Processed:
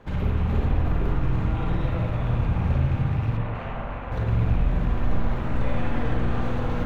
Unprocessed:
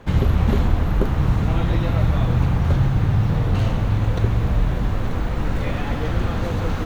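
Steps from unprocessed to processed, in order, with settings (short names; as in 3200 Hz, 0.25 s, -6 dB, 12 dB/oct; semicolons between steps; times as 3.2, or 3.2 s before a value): rattling part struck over -15 dBFS, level -25 dBFS; 3.37–4.12 three-band isolator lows -12 dB, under 490 Hz, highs -16 dB, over 2600 Hz; limiter -14.5 dBFS, peak gain reduction 9 dB; high shelf 3800 Hz -7.5 dB; notches 50/100/150/200/250/300/350/400 Hz; spring tank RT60 1.2 s, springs 45/50 ms, chirp 65 ms, DRR -2.5 dB; gain -5.5 dB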